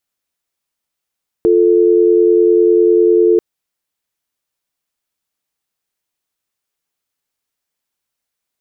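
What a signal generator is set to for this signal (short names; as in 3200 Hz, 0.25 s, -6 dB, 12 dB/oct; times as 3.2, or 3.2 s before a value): call progress tone dial tone, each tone -10 dBFS 1.94 s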